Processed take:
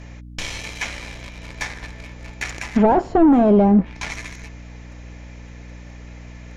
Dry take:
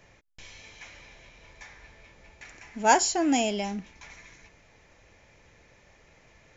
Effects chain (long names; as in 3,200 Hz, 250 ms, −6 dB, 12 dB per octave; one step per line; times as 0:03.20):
leveller curve on the samples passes 2
mains hum 60 Hz, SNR 27 dB
in parallel at −12 dB: sine wavefolder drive 14 dB, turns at −7 dBFS
on the sum: treble cut that deepens with the level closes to 610 Hz, closed at −14.5 dBFS
level +5.5 dB